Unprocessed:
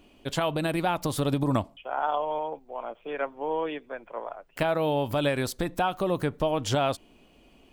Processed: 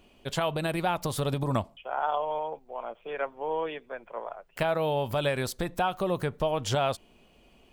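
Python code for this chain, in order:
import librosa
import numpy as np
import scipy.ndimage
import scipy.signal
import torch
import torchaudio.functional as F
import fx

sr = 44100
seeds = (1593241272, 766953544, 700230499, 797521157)

y = fx.peak_eq(x, sr, hz=290.0, db=-9.0, octaves=0.27)
y = F.gain(torch.from_numpy(y), -1.0).numpy()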